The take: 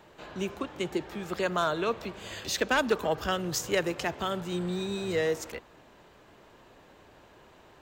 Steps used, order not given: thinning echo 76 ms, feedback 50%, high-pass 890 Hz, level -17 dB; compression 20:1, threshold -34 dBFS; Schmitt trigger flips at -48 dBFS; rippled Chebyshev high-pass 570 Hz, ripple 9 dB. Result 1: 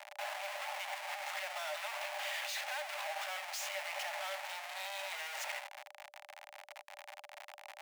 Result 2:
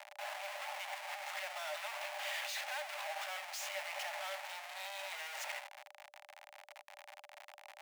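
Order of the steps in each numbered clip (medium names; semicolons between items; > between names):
thinning echo > Schmitt trigger > rippled Chebyshev high-pass > compression; thinning echo > Schmitt trigger > compression > rippled Chebyshev high-pass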